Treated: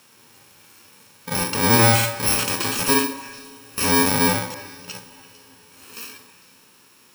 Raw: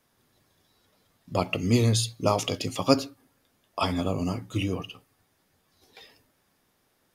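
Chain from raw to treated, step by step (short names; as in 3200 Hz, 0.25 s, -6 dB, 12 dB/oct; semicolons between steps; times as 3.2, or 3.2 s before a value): FFT order left unsorted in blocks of 64 samples; in parallel at -2 dB: compressor, threshold -35 dBFS, peak gain reduction 20 dB; on the sum: overdrive pedal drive 25 dB, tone 4300 Hz, clips at -2.5 dBFS; 4.47–4.88 flipped gate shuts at -16 dBFS, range -26 dB; delay with a stepping band-pass 0.113 s, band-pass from 280 Hz, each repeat 1.4 oct, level -10 dB; on a send at -21 dB: reverb RT60 5.0 s, pre-delay 83 ms; on the sum: harmonic-percussive split percussive -15 dB; gain +3 dB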